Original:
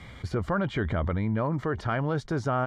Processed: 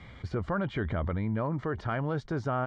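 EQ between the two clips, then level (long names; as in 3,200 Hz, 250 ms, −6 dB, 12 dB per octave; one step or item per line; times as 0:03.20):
high-frequency loss of the air 93 metres
−3.0 dB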